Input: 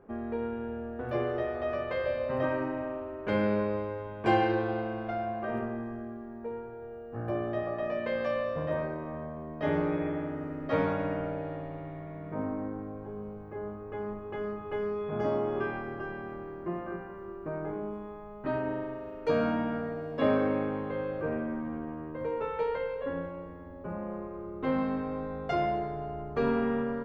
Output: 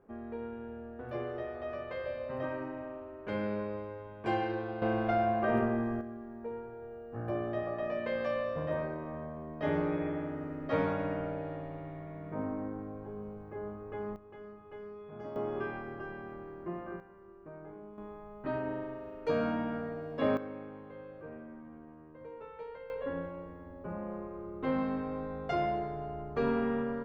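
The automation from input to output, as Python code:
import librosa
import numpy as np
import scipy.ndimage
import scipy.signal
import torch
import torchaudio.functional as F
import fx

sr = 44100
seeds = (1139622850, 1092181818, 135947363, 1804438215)

y = fx.gain(x, sr, db=fx.steps((0.0, -7.0), (4.82, 4.5), (6.01, -2.5), (14.16, -13.5), (15.36, -4.5), (17.0, -12.5), (17.98, -3.5), (20.37, -14.0), (22.9, -2.5)))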